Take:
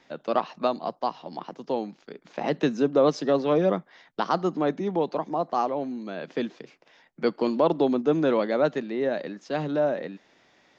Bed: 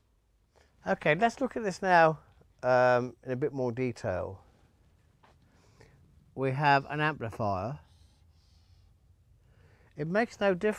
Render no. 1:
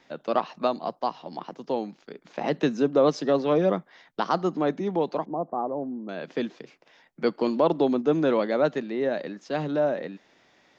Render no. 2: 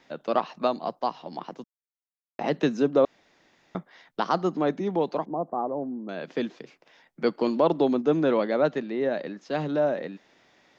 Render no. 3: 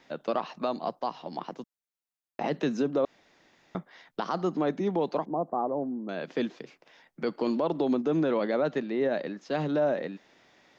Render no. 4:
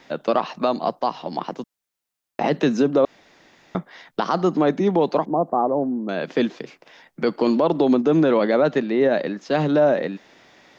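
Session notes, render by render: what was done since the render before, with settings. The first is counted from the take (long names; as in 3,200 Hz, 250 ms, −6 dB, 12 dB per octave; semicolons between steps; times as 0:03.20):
0:05.25–0:06.09: Gaussian smoothing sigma 8.2 samples
0:01.64–0:02.39: silence; 0:03.05–0:03.75: fill with room tone; 0:08.15–0:09.49: high-frequency loss of the air 52 metres
brickwall limiter −18 dBFS, peak gain reduction 8 dB
level +9 dB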